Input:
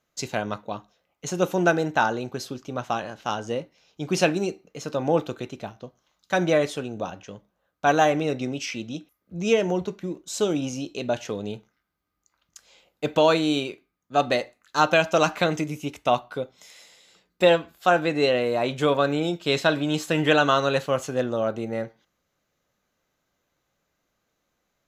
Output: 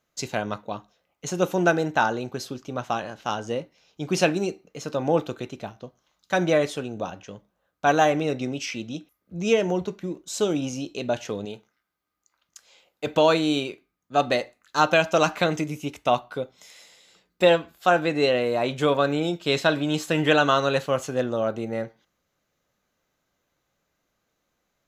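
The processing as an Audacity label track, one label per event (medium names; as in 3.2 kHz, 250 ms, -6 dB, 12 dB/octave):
11.450000	13.070000	bass shelf 220 Hz -10.5 dB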